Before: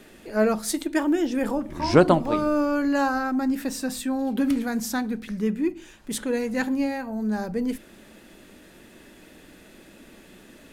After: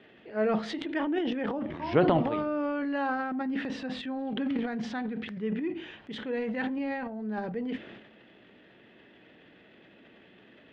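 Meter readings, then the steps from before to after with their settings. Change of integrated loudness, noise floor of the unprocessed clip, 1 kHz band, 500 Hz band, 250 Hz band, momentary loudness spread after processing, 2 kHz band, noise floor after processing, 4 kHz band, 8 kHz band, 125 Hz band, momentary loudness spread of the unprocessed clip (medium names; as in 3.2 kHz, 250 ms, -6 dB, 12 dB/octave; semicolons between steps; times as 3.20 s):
-6.5 dB, -51 dBFS, -5.5 dB, -5.5 dB, -7.0 dB, 9 LU, -5.0 dB, -57 dBFS, -5.0 dB, under -25 dB, -5.5 dB, 8 LU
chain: cabinet simulation 100–3400 Hz, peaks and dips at 120 Hz +6 dB, 440 Hz +4 dB, 720 Hz +4 dB, 1.9 kHz +5 dB, 3.1 kHz +7 dB; transient shaper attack -1 dB, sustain +11 dB; trim -9 dB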